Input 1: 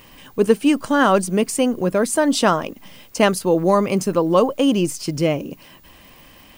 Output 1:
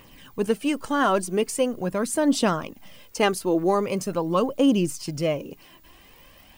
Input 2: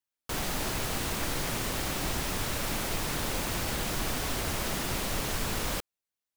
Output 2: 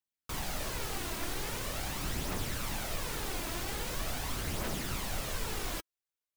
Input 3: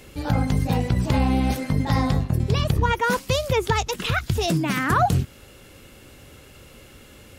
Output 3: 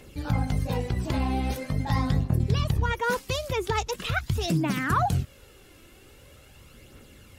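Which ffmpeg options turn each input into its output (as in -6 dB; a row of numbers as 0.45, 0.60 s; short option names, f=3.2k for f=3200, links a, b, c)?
-af "aphaser=in_gain=1:out_gain=1:delay=3.1:decay=0.4:speed=0.43:type=triangular,volume=-6dB"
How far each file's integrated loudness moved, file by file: -5.5, -5.0, -4.5 LU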